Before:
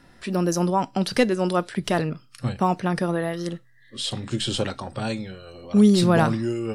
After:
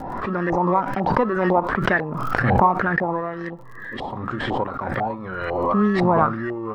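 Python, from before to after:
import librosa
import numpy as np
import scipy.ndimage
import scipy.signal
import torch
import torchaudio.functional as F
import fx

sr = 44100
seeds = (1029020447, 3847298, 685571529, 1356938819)

p1 = fx.bass_treble(x, sr, bass_db=-5, treble_db=6)
p2 = fx.sample_hold(p1, sr, seeds[0], rate_hz=1500.0, jitter_pct=0)
p3 = p1 + (p2 * librosa.db_to_amplitude(-7.0))
p4 = fx.wow_flutter(p3, sr, seeds[1], rate_hz=2.1, depth_cents=28.0)
p5 = fx.filter_lfo_lowpass(p4, sr, shape='saw_up', hz=2.0, low_hz=760.0, high_hz=1900.0, q=7.6)
p6 = fx.dmg_crackle(p5, sr, seeds[2], per_s=55.0, level_db=-54.0)
p7 = fx.pre_swell(p6, sr, db_per_s=28.0)
y = p7 * librosa.db_to_amplitude(-4.5)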